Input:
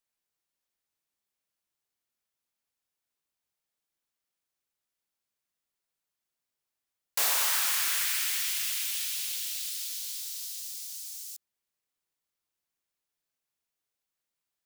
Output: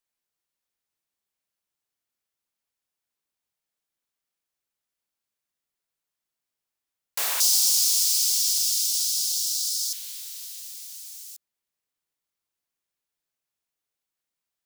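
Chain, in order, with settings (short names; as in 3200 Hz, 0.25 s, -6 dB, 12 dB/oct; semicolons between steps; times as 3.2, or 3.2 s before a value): 7.4–9.93 EQ curve 290 Hz 0 dB, 920 Hz -10 dB, 1600 Hz -27 dB, 5100 Hz +14 dB, 13000 Hz +5 dB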